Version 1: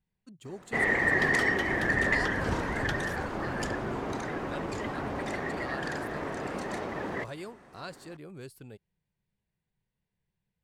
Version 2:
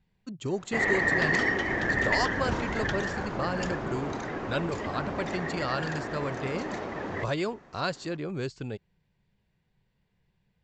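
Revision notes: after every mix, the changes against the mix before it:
speech +11.5 dB; master: add steep low-pass 7500 Hz 96 dB/oct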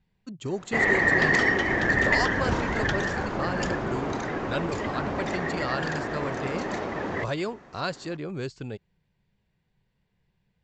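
background +4.0 dB

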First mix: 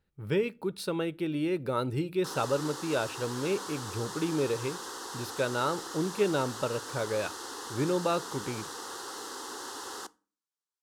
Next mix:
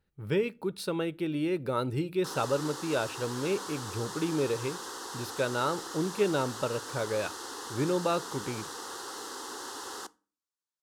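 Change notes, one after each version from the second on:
none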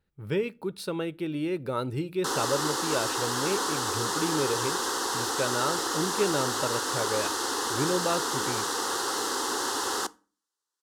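background +11.0 dB

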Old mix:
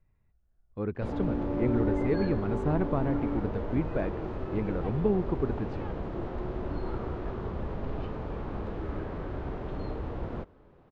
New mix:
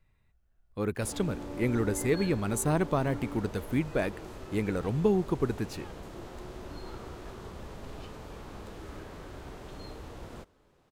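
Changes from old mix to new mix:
background -10.0 dB; master: remove tape spacing loss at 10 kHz 41 dB

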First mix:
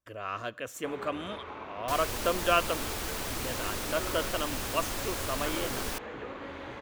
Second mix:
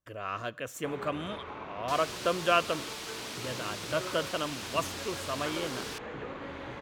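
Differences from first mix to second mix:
second sound: add band-pass 3800 Hz, Q 0.86; master: add bell 150 Hz +8.5 dB 0.46 oct

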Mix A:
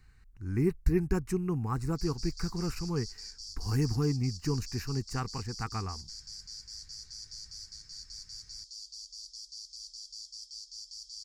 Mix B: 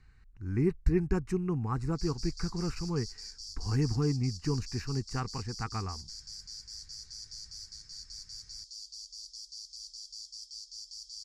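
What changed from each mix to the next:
speech: add air absorption 66 m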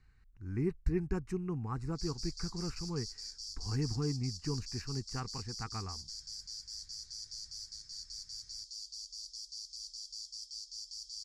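speech -5.5 dB

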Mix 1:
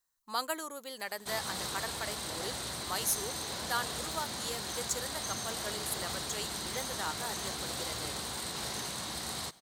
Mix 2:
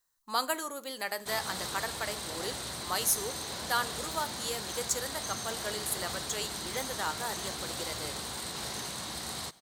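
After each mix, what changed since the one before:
reverb: on, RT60 0.50 s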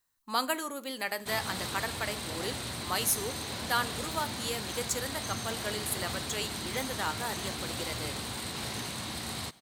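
master: add fifteen-band EQ 100 Hz +10 dB, 250 Hz +6 dB, 2500 Hz +5 dB, 6300 Hz -3 dB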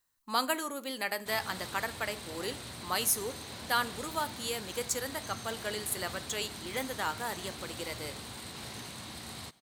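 background -6.5 dB

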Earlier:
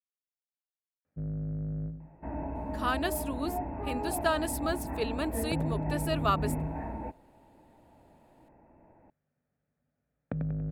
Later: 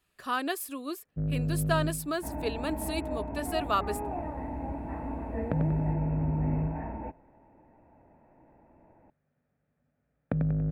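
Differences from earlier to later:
speech: entry -2.55 s; first sound +5.0 dB

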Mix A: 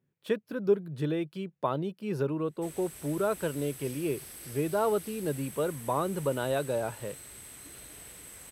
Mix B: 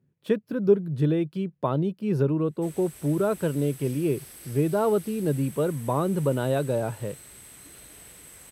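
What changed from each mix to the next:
speech: add low shelf 380 Hz +11 dB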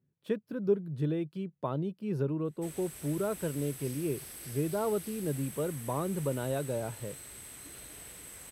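speech -8.0 dB

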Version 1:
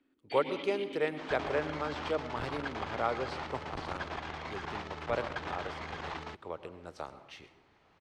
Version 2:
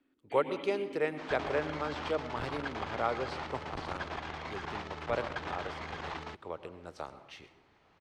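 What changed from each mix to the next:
first sound: add air absorption 470 m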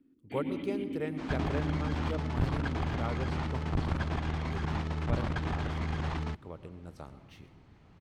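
speech -8.0 dB; master: remove three-band isolator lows -16 dB, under 390 Hz, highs -17 dB, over 7900 Hz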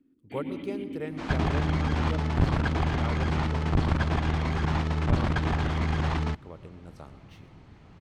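second sound +6.5 dB

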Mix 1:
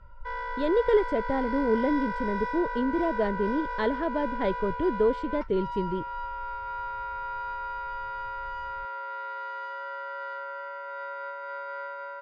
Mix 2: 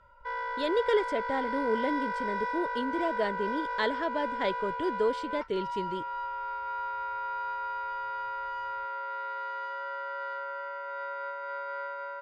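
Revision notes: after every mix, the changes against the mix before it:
speech: add tilt +3.5 dB/oct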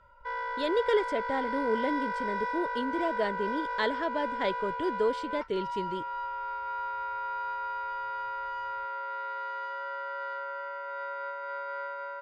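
none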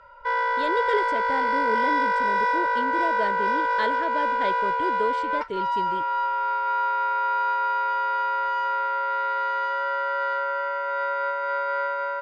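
background +10.5 dB

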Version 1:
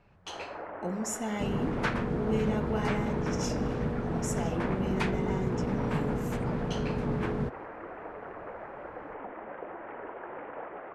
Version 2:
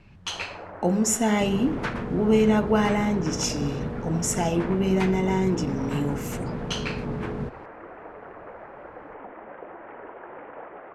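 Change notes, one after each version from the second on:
speech +11.5 dB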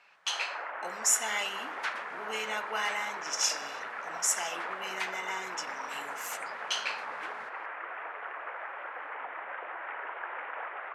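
first sound +11.0 dB; master: add HPF 1400 Hz 12 dB/oct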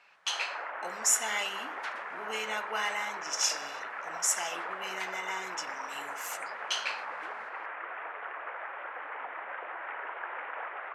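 second sound -5.5 dB

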